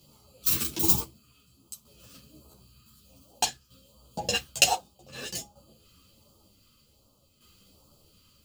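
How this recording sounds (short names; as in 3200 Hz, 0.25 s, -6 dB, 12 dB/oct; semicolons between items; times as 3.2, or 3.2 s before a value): phasing stages 2, 1.3 Hz, lowest notch 730–1800 Hz; tremolo saw down 0.54 Hz, depth 60%; a shimmering, thickened sound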